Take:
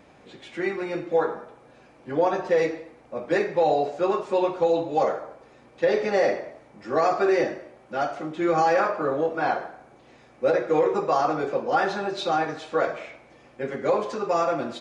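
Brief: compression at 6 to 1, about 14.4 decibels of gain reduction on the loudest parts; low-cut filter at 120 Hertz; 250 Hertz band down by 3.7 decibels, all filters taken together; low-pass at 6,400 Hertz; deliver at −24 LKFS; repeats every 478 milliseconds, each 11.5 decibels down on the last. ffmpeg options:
ffmpeg -i in.wav -af "highpass=120,lowpass=6400,equalizer=frequency=250:width_type=o:gain=-6,acompressor=threshold=-34dB:ratio=6,aecho=1:1:478|956|1434:0.266|0.0718|0.0194,volume=14dB" out.wav

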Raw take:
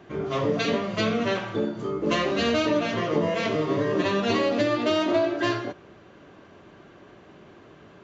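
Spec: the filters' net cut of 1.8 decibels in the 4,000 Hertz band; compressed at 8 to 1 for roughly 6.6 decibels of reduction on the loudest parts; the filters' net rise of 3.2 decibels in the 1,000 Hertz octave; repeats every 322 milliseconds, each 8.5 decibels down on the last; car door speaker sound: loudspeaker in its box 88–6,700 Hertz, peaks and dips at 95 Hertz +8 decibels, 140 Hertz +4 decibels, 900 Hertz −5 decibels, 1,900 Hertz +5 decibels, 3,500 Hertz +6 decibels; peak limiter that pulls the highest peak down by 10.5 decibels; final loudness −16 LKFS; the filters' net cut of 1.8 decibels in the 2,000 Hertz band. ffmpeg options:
ffmpeg -i in.wav -af "equalizer=frequency=1000:width_type=o:gain=8,equalizer=frequency=2000:width_type=o:gain=-7,equalizer=frequency=4000:width_type=o:gain=-4.5,acompressor=threshold=-24dB:ratio=8,alimiter=level_in=2dB:limit=-24dB:level=0:latency=1,volume=-2dB,highpass=88,equalizer=frequency=95:width_type=q:width=4:gain=8,equalizer=frequency=140:width_type=q:width=4:gain=4,equalizer=frequency=900:width_type=q:width=4:gain=-5,equalizer=frequency=1900:width_type=q:width=4:gain=5,equalizer=frequency=3500:width_type=q:width=4:gain=6,lowpass=frequency=6700:width=0.5412,lowpass=frequency=6700:width=1.3066,aecho=1:1:322|644|966|1288:0.376|0.143|0.0543|0.0206,volume=17.5dB" out.wav

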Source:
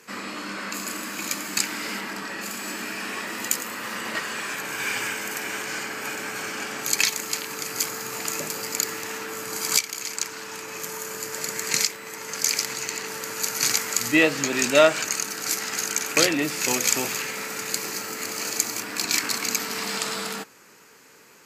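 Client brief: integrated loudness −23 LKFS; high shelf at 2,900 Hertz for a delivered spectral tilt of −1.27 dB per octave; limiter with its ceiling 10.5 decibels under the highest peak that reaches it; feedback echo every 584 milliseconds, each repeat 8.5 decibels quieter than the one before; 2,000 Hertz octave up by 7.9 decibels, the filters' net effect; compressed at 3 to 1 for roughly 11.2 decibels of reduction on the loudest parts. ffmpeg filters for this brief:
ffmpeg -i in.wav -af "equalizer=frequency=2000:width_type=o:gain=8.5,highshelf=frequency=2900:gain=3,acompressor=threshold=-24dB:ratio=3,alimiter=limit=-15.5dB:level=0:latency=1,aecho=1:1:584|1168|1752|2336:0.376|0.143|0.0543|0.0206,volume=3.5dB" out.wav

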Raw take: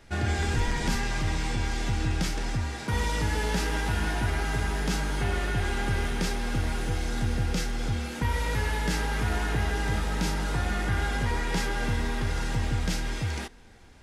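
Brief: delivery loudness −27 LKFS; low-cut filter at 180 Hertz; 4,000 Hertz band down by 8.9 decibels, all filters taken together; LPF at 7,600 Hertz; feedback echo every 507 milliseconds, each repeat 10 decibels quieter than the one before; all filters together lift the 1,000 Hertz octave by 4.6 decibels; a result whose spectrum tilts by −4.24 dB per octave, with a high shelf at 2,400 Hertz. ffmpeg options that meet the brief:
ffmpeg -i in.wav -af "highpass=180,lowpass=7600,equalizer=frequency=1000:width_type=o:gain=7,highshelf=frequency=2400:gain=-5,equalizer=frequency=4000:width_type=o:gain=-7.5,aecho=1:1:507|1014|1521|2028:0.316|0.101|0.0324|0.0104,volume=4.5dB" out.wav

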